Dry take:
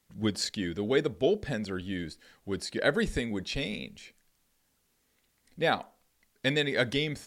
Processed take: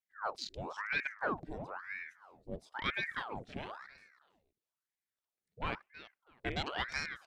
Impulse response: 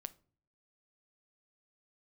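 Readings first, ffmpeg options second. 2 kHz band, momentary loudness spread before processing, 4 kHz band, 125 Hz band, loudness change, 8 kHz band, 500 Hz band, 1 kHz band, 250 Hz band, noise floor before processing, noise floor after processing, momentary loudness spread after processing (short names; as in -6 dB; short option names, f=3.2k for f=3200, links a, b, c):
-4.5 dB, 10 LU, -10.0 dB, -12.5 dB, -9.0 dB, under -10 dB, -15.5 dB, -2.5 dB, -15.5 dB, -73 dBFS, under -85 dBFS, 15 LU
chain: -af "aeval=exprs='0.266*(cos(1*acos(clip(val(0)/0.266,-1,1)))-cos(1*PI/2))+0.00596*(cos(5*acos(clip(val(0)/0.266,-1,1)))-cos(5*PI/2))+0.0133*(cos(6*acos(clip(val(0)/0.266,-1,1)))-cos(6*PI/2))':c=same,equalizer=f=760:t=o:w=0.29:g=-8.5,afwtdn=0.02,aecho=1:1:324|648:0.158|0.0365,aeval=exprs='val(0)*sin(2*PI*1100*n/s+1100*0.85/1*sin(2*PI*1*n/s))':c=same,volume=-7dB"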